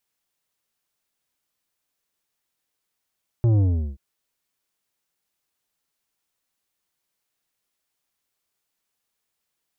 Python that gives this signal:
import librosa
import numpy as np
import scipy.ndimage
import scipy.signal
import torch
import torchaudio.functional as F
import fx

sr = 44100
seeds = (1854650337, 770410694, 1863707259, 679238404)

y = fx.sub_drop(sr, level_db=-16, start_hz=120.0, length_s=0.53, drive_db=9.5, fade_s=0.38, end_hz=65.0)